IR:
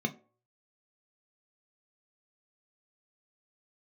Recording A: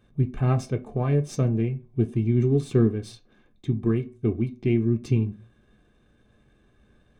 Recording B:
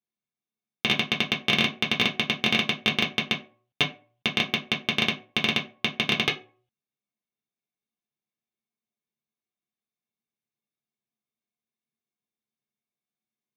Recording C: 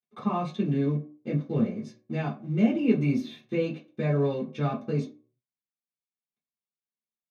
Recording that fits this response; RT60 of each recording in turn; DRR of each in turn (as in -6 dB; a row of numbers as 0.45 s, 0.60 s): A; 0.45 s, 0.45 s, 0.45 s; 5.0 dB, -2.5 dB, -8.5 dB